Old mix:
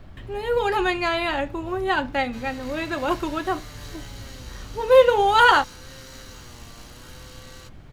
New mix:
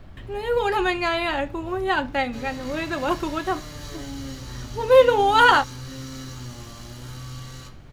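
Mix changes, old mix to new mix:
background: remove high-pass 310 Hz 6 dB/octave; reverb: on, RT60 0.55 s

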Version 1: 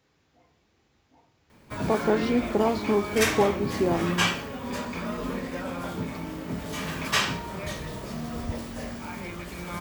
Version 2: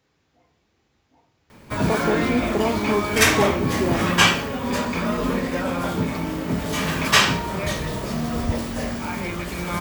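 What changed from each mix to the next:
background +8.5 dB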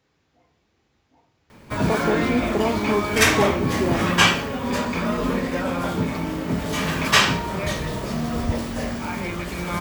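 master: add treble shelf 8.1 kHz -3.5 dB

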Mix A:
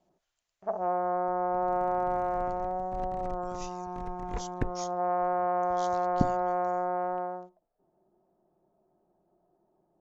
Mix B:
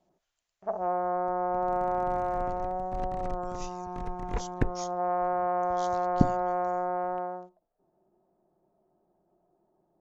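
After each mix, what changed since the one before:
second sound +4.0 dB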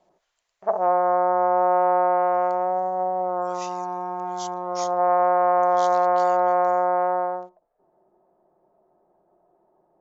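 second sound: muted; master: add graphic EQ 500/1000/2000/4000/8000 Hz +8/+8/+7/+5/+5 dB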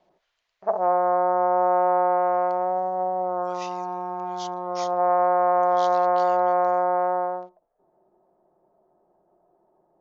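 speech: add tilt EQ +4.5 dB/octave; master: add distance through air 260 m

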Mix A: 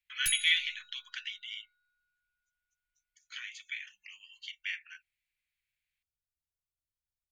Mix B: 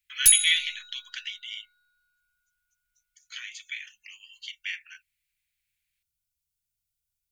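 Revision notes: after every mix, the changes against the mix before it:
background +6.5 dB; master: add treble shelf 3.5 kHz +10 dB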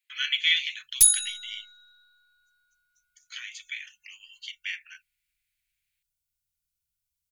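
background: entry +0.75 s

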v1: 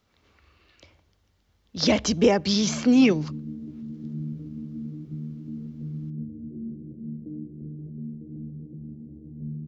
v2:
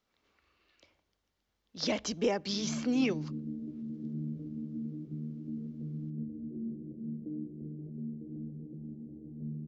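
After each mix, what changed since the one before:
speech -9.5 dB; master: add peaking EQ 85 Hz -11.5 dB 1.7 oct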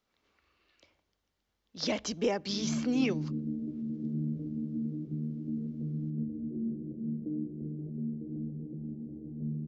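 background +4.0 dB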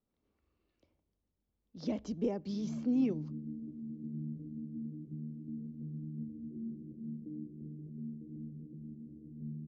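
background -7.0 dB; master: add FFT filter 240 Hz 0 dB, 1 kHz -12 dB, 1.6 kHz -18 dB

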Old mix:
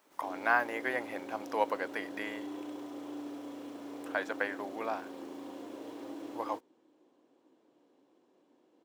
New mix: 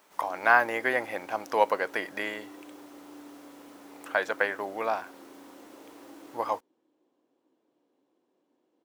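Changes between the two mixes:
speech +7.0 dB; background -6.0 dB

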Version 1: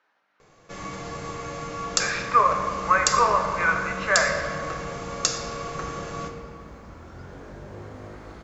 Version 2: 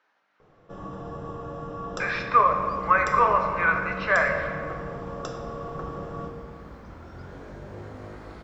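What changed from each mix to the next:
first sound: add boxcar filter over 20 samples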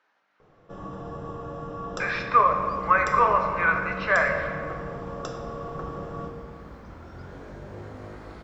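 no change

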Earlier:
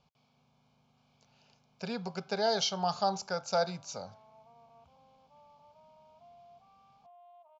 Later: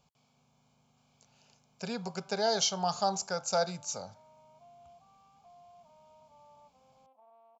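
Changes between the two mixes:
background: entry -1.60 s; master: remove low-pass 5.3 kHz 24 dB/octave

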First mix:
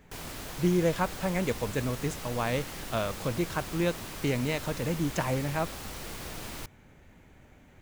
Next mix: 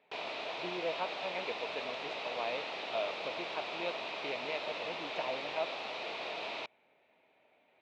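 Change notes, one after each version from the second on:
speech -11.5 dB; master: add cabinet simulation 430–4100 Hz, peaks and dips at 440 Hz +4 dB, 650 Hz +10 dB, 920 Hz +4 dB, 1.6 kHz -5 dB, 2.5 kHz +9 dB, 3.8 kHz +6 dB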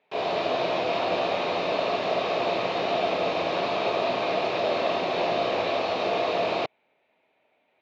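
reverb: on, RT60 1.1 s

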